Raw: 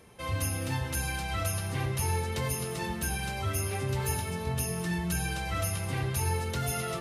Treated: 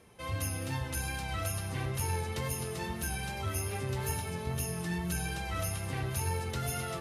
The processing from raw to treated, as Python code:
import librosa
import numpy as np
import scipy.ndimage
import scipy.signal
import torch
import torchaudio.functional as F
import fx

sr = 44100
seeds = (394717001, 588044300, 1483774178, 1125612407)

p1 = fx.wow_flutter(x, sr, seeds[0], rate_hz=2.1, depth_cents=20.0)
p2 = p1 + fx.echo_alternate(p1, sr, ms=506, hz=1300.0, feedback_pct=73, wet_db=-14, dry=0)
p3 = fx.cheby_harmonics(p2, sr, harmonics=(2,), levels_db=(-19,), full_scale_db=-17.5)
y = F.gain(torch.from_numpy(p3), -3.5).numpy()